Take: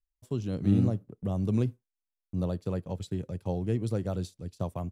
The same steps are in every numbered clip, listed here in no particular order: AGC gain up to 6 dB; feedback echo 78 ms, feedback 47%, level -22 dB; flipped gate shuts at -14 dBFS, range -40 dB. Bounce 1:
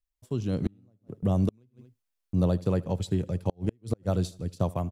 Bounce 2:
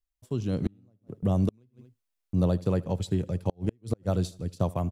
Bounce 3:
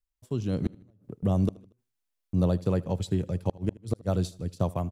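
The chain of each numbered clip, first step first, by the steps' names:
AGC > feedback echo > flipped gate; feedback echo > AGC > flipped gate; AGC > flipped gate > feedback echo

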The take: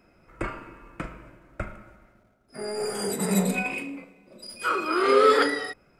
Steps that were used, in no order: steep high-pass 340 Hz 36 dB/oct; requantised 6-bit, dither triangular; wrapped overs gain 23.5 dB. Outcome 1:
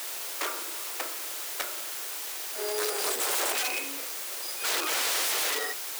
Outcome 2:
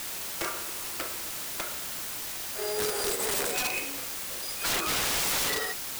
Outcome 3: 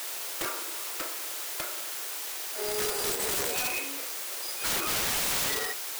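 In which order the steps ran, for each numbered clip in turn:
wrapped overs > requantised > steep high-pass; steep high-pass > wrapped overs > requantised; requantised > steep high-pass > wrapped overs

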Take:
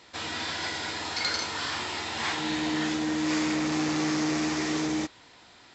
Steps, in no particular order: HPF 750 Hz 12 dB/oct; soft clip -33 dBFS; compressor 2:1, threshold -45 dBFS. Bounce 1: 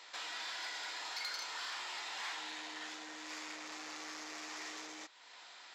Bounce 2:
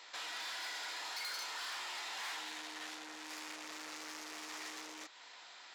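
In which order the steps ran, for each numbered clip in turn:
compressor > soft clip > HPF; soft clip > compressor > HPF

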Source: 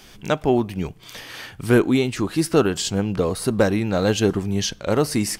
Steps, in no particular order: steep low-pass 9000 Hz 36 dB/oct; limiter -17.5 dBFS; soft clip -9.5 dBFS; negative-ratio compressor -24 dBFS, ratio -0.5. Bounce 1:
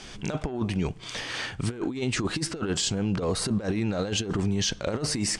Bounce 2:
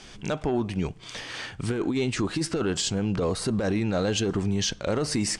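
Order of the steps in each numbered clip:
steep low-pass > soft clip > negative-ratio compressor > limiter; steep low-pass > soft clip > limiter > negative-ratio compressor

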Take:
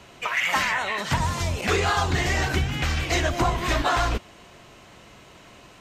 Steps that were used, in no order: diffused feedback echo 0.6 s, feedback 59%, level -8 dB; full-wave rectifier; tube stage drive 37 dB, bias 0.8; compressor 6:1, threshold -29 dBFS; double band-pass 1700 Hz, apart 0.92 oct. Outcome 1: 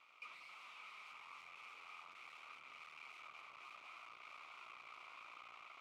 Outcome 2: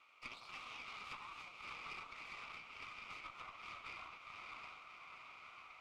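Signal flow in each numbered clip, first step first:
diffused feedback echo > compressor > tube stage > full-wave rectifier > double band-pass; full-wave rectifier > diffused feedback echo > compressor > double band-pass > tube stage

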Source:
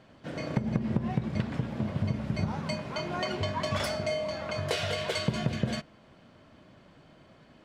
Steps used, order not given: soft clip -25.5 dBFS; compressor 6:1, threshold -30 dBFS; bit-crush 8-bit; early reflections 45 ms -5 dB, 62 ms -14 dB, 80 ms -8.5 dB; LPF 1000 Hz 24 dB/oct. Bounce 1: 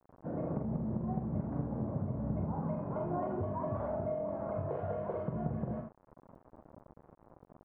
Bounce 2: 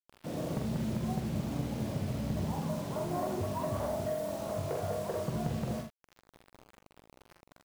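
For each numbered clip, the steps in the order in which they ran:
compressor > soft clip > early reflections > bit-crush > LPF; LPF > soft clip > compressor > bit-crush > early reflections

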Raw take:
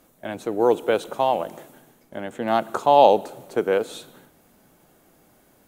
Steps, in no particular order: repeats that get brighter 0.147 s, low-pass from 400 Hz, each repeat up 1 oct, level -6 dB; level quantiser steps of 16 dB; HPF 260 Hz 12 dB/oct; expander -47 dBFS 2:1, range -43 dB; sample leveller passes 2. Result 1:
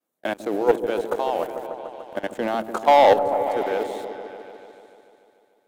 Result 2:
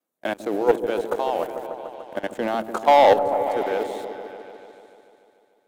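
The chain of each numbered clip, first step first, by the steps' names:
HPF > level quantiser > expander > sample leveller > repeats that get brighter; expander > HPF > level quantiser > sample leveller > repeats that get brighter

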